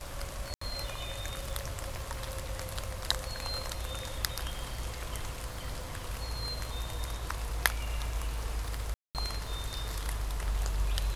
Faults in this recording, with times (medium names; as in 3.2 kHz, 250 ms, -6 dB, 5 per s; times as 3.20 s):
crackle 160 per s -42 dBFS
0.54–0.61 s: dropout 74 ms
8.94–9.15 s: dropout 208 ms